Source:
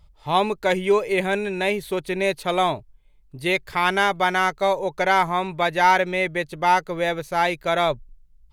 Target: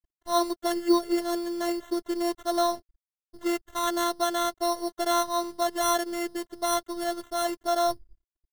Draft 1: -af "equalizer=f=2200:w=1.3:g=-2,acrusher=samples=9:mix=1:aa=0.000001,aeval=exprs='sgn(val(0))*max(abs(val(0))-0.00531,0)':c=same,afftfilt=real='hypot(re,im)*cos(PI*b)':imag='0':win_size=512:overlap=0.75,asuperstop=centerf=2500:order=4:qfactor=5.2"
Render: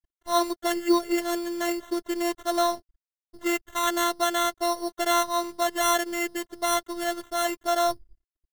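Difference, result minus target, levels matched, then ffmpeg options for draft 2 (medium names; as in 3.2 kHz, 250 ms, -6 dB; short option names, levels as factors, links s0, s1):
2 kHz band +5.0 dB
-af "equalizer=f=2200:w=1.3:g=-11,acrusher=samples=9:mix=1:aa=0.000001,aeval=exprs='sgn(val(0))*max(abs(val(0))-0.00531,0)':c=same,afftfilt=real='hypot(re,im)*cos(PI*b)':imag='0':win_size=512:overlap=0.75,asuperstop=centerf=2500:order=4:qfactor=5.2"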